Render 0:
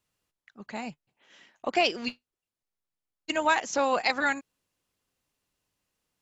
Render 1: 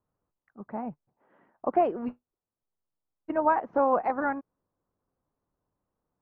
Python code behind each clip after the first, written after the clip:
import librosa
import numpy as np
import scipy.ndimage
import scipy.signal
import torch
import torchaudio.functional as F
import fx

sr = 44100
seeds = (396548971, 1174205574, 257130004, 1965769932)

y = scipy.signal.sosfilt(scipy.signal.butter(4, 1200.0, 'lowpass', fs=sr, output='sos'), x)
y = F.gain(torch.from_numpy(y), 2.5).numpy()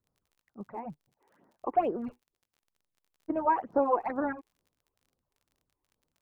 y = fx.phaser_stages(x, sr, stages=8, low_hz=170.0, high_hz=2800.0, hz=2.2, feedback_pct=25)
y = fx.dmg_crackle(y, sr, seeds[0], per_s=42.0, level_db=-54.0)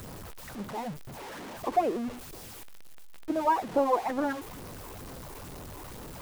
y = x + 0.5 * 10.0 ** (-36.0 / 20.0) * np.sign(x)